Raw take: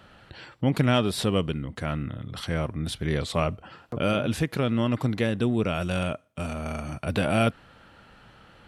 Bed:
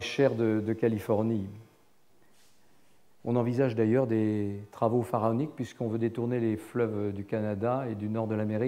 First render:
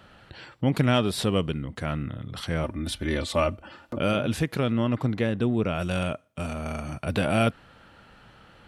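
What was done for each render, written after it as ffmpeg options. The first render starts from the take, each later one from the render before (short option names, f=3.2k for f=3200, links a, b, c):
-filter_complex "[0:a]asettb=1/sr,asplit=3[a][b][c];[a]atrim=end=2.634[d];[b]atrim=start=2.63:end=4,asetpts=PTS-STARTPTS,afade=t=in:d=0.004:c=qsin,afade=t=out:st=1.366:d=0.004:c=qsin,aecho=1:1:3.4:0.65,atrim=end_sample=60417[e];[c]atrim=start=3.996[f];[d][e]acrossfade=d=0.004:c1=hsin:c2=qsin[g];[g][f]acrossfade=d=0.004:c1=qsin:c2=hsin,asettb=1/sr,asplit=3[h][i][j];[h]atrim=end=4.724[k];[i]atrim=start=4.72:end=5.79,asetpts=PTS-STARTPTS,afade=t=in:d=0.004:c=qsin,afade=t=out:st=1.066:d=0.004:c=qsin,highshelf=f=4k:g=-8.5[l];[j]atrim=start=5.786[m];[k][l]acrossfade=d=0.004:c1=hsin:c2=qsin[n];[n][m]acrossfade=d=0.004:c1=qsin:c2=hsin"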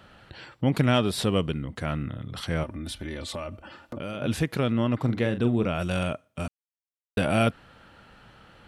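-filter_complex "[0:a]asettb=1/sr,asplit=3[a][b][c];[a]atrim=end=2.634[d];[b]atrim=start=2.63:end=4.22,asetpts=PTS-STARTPTS,afade=t=in:d=0.004:c=qsin,afade=t=out:st=1.586:d=0.004:c=qsin,acompressor=threshold=-31dB:ratio=5:attack=3.2:release=140:knee=1:detection=peak[e];[c]atrim=start=4.216[f];[d][e]acrossfade=d=0.004:c1=hsin:c2=qsin[g];[g][f]acrossfade=d=0.004:c1=qsin:c2=hsin,asettb=1/sr,asplit=3[h][i][j];[h]atrim=end=4.984[k];[i]atrim=start=4.98:end=5.69,asetpts=PTS-STARTPTS,afade=t=in:d=0.004:c=qsin,afade=t=out:st=0.706:d=0.004:c=qsin,asplit=2[l][m];[m]adelay=42,volume=-10dB[n];[l][n]amix=inputs=2:normalize=0,atrim=end_sample=31311[o];[j]atrim=start=5.686[p];[k][o]acrossfade=d=0.004:c1=hsin:c2=qsin[q];[q][p]acrossfade=d=0.004:c1=qsin:c2=hsin,asplit=3[r][s][t];[r]atrim=end=6.48,asetpts=PTS-STARTPTS,afade=t=out:st=6.476:d=0.004:c=hsin[u];[s]atrim=start=6.48:end=7.17,asetpts=PTS-STARTPTS,volume=0[v];[t]atrim=start=7.17,asetpts=PTS-STARTPTS,afade=t=in:d=0.004:c=hsin[w];[u][v][w]concat=n=3:v=0:a=1"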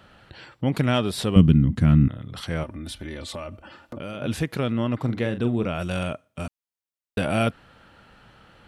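-filter_complex "[0:a]asettb=1/sr,asplit=3[a][b][c];[a]atrim=end=1.364[d];[b]atrim=start=1.36:end=2.08,asetpts=PTS-STARTPTS,afade=t=in:d=0.004:c=qsin,afade=t=out:st=0.716:d=0.004:c=qsin,lowshelf=f=340:t=q:w=1.5:g=13[e];[c]atrim=start=2.076[f];[d][e]acrossfade=d=0.004:c1=hsin:c2=qsin[g];[g][f]acrossfade=d=0.004:c1=qsin:c2=hsin"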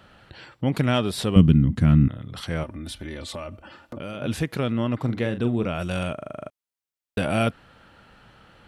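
-filter_complex "[0:a]asplit=10[a][b][c][d][e][f][g][h][i][j];[a]atrim=end=6.182[k];[b]atrim=start=6.138:end=6.182[l];[c]atrim=start=6.138:end=6.182[m];[d]atrim=start=6.138:end=6.182[n];[e]atrim=start=6.138:end=6.182[o];[f]atrim=start=6.138:end=6.182[p];[g]atrim=start=6.138:end=6.182[q];[h]atrim=start=6.138:end=6.182[r];[i]atrim=start=6.138:end=6.182[s];[j]atrim=start=6.498[t];[k][l]acrossfade=d=0.004:c1=hsin:c2=hsin[u];[u][m]acrossfade=d=0.004:c1=hsin:c2=hsin[v];[v][n]acrossfade=d=0.004:c1=hsin:c2=hsin[w];[w][o]acrossfade=d=0.004:c1=hsin:c2=hsin[x];[x][p]acrossfade=d=0.004:c1=hsin:c2=hsin[y];[y][q]acrossfade=d=0.004:c1=hsin:c2=hsin[z];[z][r]acrossfade=d=0.004:c1=hsin:c2=hsin[aa];[aa][s]acrossfade=d=0.004:c1=hsin:c2=hsin[ab];[ab][t]acrossfade=d=0.004:c1=hsin:c2=hsin"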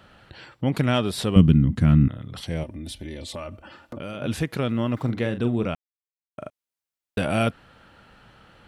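-filter_complex "[0:a]asettb=1/sr,asplit=3[a][b][c];[a]atrim=end=2.374[d];[b]atrim=start=2.37:end=3.36,asetpts=PTS-STARTPTS,afade=t=in:d=0.004:c=qsin,afade=t=out:st=0.986:d=0.004:c=qsin,equalizer=f=1.3k:w=1.9:g=-13.5[e];[c]atrim=start=3.356[f];[d][e]acrossfade=d=0.004:c1=hsin:c2=qsin[g];[g][f]acrossfade=d=0.004:c1=qsin:c2=hsin,asettb=1/sr,asplit=3[h][i][j];[h]atrim=end=4.694[k];[i]atrim=start=4.69:end=5.11,asetpts=PTS-STARTPTS,afade=t=in:d=0.004:c=qsin,afade=t=out:st=0.416:d=0.004:c=qsin,aeval=exprs='val(0)*gte(abs(val(0)),0.00251)':c=same[l];[j]atrim=start=5.106[m];[k][l]acrossfade=d=0.004:c1=hsin:c2=qsin[n];[n][m]acrossfade=d=0.004:c1=qsin:c2=hsin,asplit=3[o][p][q];[o]atrim=end=5.75,asetpts=PTS-STARTPTS,afade=t=out:st=5.746:d=0.004:c=hsin[r];[p]atrim=start=5.75:end=6.38,asetpts=PTS-STARTPTS,volume=0[s];[q]atrim=start=6.38,asetpts=PTS-STARTPTS,afade=t=in:d=0.004:c=hsin[t];[r][s][t]concat=n=3:v=0:a=1"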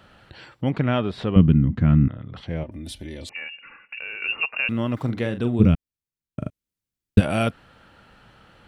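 -filter_complex "[0:a]asettb=1/sr,asplit=3[a][b][c];[a]atrim=end=0.724[d];[b]atrim=start=0.72:end=2.72,asetpts=PTS-STARTPTS,afade=t=in:d=0.004:c=qsin,afade=t=out:st=1.996:d=0.004:c=qsin,lowpass=2.5k[e];[c]atrim=start=2.716[f];[d][e]acrossfade=d=0.004:c1=hsin:c2=qsin[g];[g][f]acrossfade=d=0.004:c1=qsin:c2=hsin,asettb=1/sr,asplit=3[h][i][j];[h]atrim=end=3.294[k];[i]atrim=start=3.29:end=4.69,asetpts=PTS-STARTPTS,afade=t=in:d=0.004:c=qsin,afade=t=out:st=1.396:d=0.004:c=qsin,lowpass=f=2.5k:t=q:w=0.5098,lowpass=f=2.5k:t=q:w=0.6013,lowpass=f=2.5k:t=q:w=0.9,lowpass=f=2.5k:t=q:w=2.563,afreqshift=-2900[l];[j]atrim=start=4.686[m];[k][l]acrossfade=d=0.004:c1=hsin:c2=qsin[n];[n][m]acrossfade=d=0.004:c1=qsin:c2=hsin,asplit=3[o][p][q];[o]afade=t=out:st=5.59:d=0.02[r];[p]asubboost=boost=9:cutoff=250,afade=t=in:st=5.59:d=0.02,afade=t=out:st=7.19:d=0.02[s];[q]afade=t=in:st=7.19:d=0.02[t];[r][s][t]amix=inputs=3:normalize=0"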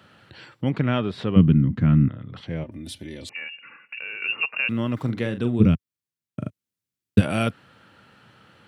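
-af "highpass=f=90:w=0.5412,highpass=f=90:w=1.3066,equalizer=f=720:t=o:w=0.81:g=-4"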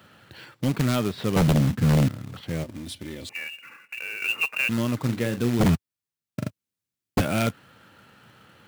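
-af "acrusher=bits=3:mode=log:mix=0:aa=0.000001,aeval=exprs='0.224*(abs(mod(val(0)/0.224+3,4)-2)-1)':c=same"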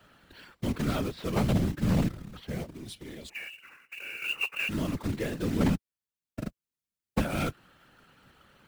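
-filter_complex "[0:a]acrossover=split=140|1700|4400[a][b][c][d];[d]asoftclip=type=tanh:threshold=-29.5dB[e];[a][b][c][e]amix=inputs=4:normalize=0,afftfilt=real='hypot(re,im)*cos(2*PI*random(0))':imag='hypot(re,im)*sin(2*PI*random(1))':win_size=512:overlap=0.75"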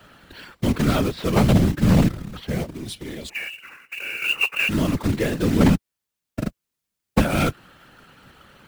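-af "volume=9.5dB"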